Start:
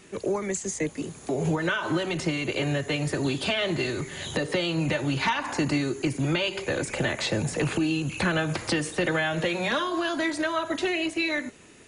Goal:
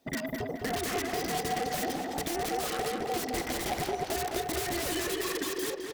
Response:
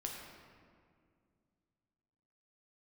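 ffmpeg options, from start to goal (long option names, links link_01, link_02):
-filter_complex "[0:a]afftfilt=real='real(if(between(b,1,1008),(2*floor((b-1)/24)+1)*24-b,b),0)':imag='imag(if(between(b,1,1008),(2*floor((b-1)/24)+1)*24-b,b),0)*if(between(b,1,1008),-1,1)':win_size=2048:overlap=0.75,afwtdn=0.0251,equalizer=frequency=170:width=0.3:gain=5,bandreject=frequency=50:width_type=h:width=6,bandreject=frequency=100:width_type=h:width=6,bandreject=frequency=150:width_type=h:width=6,bandreject=frequency=200:width_type=h:width=6,bandreject=frequency=250:width_type=h:width=6,bandreject=frequency=300:width_type=h:width=6,bandreject=frequency=350:width_type=h:width=6,bandreject=frequency=400:width_type=h:width=6,acrossover=split=440[link_01][link_02];[link_01]acompressor=threshold=-31dB:ratio=5[link_03];[link_02]aeval=exprs='(mod(22.4*val(0)+1,2)-1)/22.4':channel_layout=same[link_04];[link_03][link_04]amix=inputs=2:normalize=0,asplit=2[link_05][link_06];[link_06]adelay=423,lowpass=frequency=2100:poles=1,volume=-4dB,asplit=2[link_07][link_08];[link_08]adelay=423,lowpass=frequency=2100:poles=1,volume=0.48,asplit=2[link_09][link_10];[link_10]adelay=423,lowpass=frequency=2100:poles=1,volume=0.48,asplit=2[link_11][link_12];[link_12]adelay=423,lowpass=frequency=2100:poles=1,volume=0.48,asplit=2[link_13][link_14];[link_14]adelay=423,lowpass=frequency=2100:poles=1,volume=0.48,asplit=2[link_15][link_16];[link_16]adelay=423,lowpass=frequency=2100:poles=1,volume=0.48[link_17];[link_05][link_07][link_09][link_11][link_13][link_15][link_17]amix=inputs=7:normalize=0,asetrate=88200,aresample=44100,volume=-3dB"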